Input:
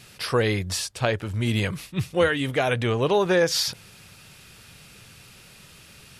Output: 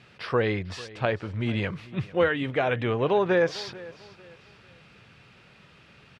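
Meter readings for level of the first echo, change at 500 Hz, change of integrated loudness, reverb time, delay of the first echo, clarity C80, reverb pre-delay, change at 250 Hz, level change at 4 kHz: -19.5 dB, -1.5 dB, -3.0 dB, none, 0.446 s, none, none, -2.5 dB, -9.0 dB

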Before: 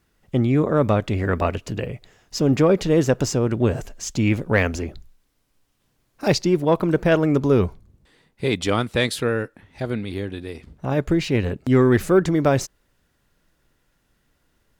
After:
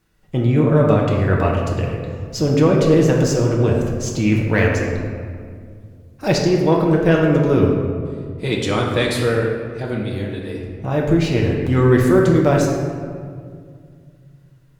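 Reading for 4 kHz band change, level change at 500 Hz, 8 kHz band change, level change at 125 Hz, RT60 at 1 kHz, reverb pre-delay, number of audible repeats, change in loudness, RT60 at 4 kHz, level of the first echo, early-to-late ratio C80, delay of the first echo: +2.0 dB, +3.5 dB, +1.5 dB, +5.5 dB, 1.9 s, 5 ms, none, +3.5 dB, 1.1 s, none, 4.0 dB, none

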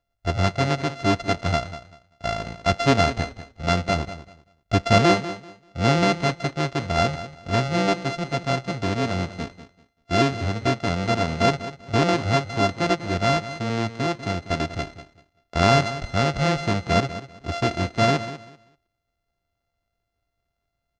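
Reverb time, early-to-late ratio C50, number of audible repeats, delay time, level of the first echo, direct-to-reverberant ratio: none, none, 2, 0.194 s, -13.5 dB, none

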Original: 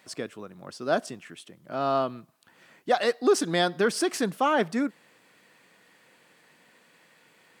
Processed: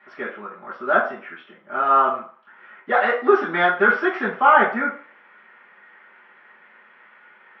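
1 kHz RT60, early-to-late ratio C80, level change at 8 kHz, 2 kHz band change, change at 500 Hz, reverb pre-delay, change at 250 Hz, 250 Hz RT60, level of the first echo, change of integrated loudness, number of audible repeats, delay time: 0.50 s, 12.0 dB, under -30 dB, +12.5 dB, +4.0 dB, 3 ms, +0.5 dB, 0.40 s, none, +7.5 dB, none, none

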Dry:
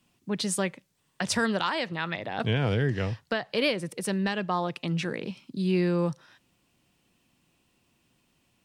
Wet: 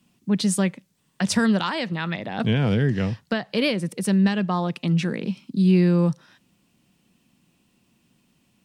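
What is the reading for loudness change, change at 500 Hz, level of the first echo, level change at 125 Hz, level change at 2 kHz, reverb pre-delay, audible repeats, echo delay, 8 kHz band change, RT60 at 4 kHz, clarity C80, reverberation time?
+6.0 dB, +2.5 dB, none, +7.5 dB, +1.5 dB, none, none, none, +3.0 dB, none, none, none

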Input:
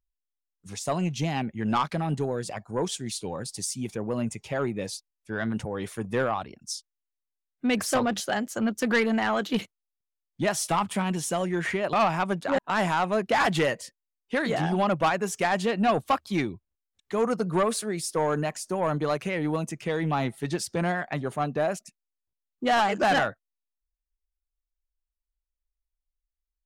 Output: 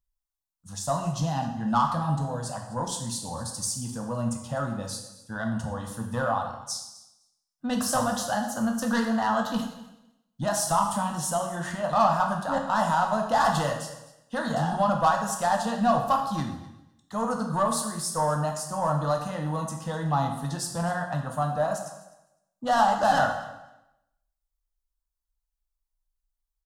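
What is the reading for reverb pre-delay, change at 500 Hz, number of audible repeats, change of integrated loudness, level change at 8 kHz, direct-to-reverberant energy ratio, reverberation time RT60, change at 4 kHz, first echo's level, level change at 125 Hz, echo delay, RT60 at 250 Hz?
6 ms, -2.0 dB, 1, 0.0 dB, +2.5 dB, 1.5 dB, 0.95 s, -2.0 dB, -19.0 dB, +1.5 dB, 0.254 s, 1.0 s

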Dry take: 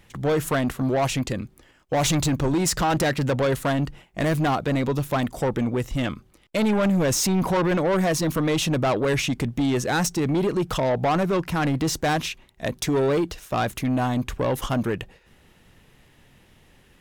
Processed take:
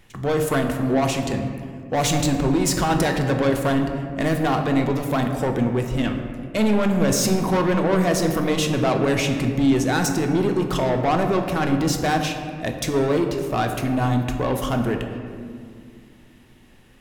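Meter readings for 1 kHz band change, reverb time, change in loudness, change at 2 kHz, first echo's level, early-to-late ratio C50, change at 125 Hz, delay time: +2.0 dB, 2.2 s, +2.0 dB, +1.5 dB, none, 6.0 dB, +1.5 dB, none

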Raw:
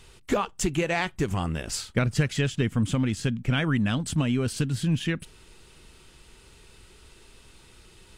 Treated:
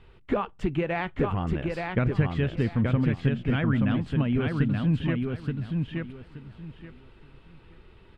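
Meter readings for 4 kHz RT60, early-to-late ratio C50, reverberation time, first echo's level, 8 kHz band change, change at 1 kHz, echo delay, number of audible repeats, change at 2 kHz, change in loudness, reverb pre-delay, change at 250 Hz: none, none, none, -3.5 dB, under -25 dB, -0.5 dB, 0.876 s, 3, -2.5 dB, -0.5 dB, none, +1.0 dB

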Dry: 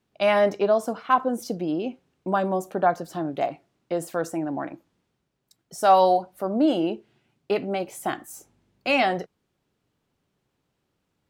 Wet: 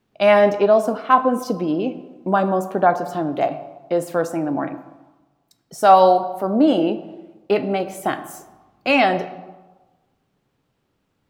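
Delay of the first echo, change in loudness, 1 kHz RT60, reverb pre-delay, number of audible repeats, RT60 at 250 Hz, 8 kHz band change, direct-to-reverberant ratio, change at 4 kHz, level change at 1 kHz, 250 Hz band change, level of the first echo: none, +5.5 dB, 1.2 s, 4 ms, none, 1.1 s, +1.5 dB, 10.0 dB, +3.5 dB, +5.5 dB, +6.0 dB, none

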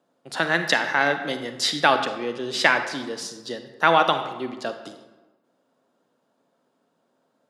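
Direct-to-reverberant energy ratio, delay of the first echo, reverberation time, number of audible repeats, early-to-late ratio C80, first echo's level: 8.0 dB, none, 1.2 s, none, 10.5 dB, none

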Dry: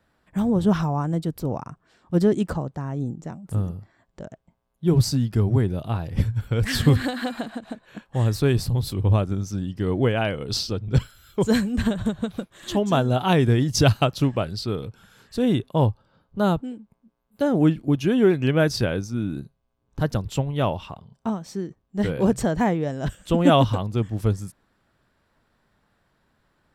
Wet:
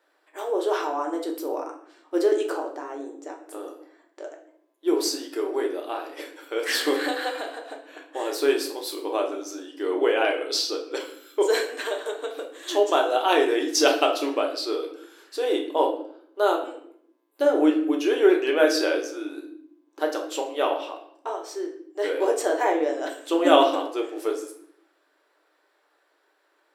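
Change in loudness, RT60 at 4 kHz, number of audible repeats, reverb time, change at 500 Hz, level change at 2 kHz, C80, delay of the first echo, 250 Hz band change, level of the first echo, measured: -1.5 dB, 0.50 s, none, 0.70 s, +3.0 dB, +2.5 dB, 12.0 dB, none, -5.5 dB, none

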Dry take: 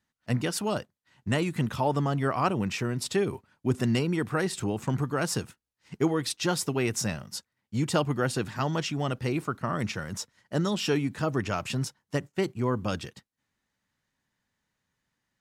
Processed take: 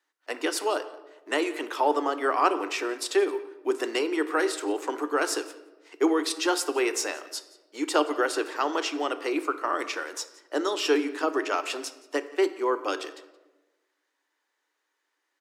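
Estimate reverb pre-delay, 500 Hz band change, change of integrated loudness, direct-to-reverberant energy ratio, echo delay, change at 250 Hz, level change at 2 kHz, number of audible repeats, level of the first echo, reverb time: 3 ms, +4.0 dB, +1.5 dB, 10.5 dB, 0.174 s, -1.0 dB, +4.0 dB, 1, -22.0 dB, 1.2 s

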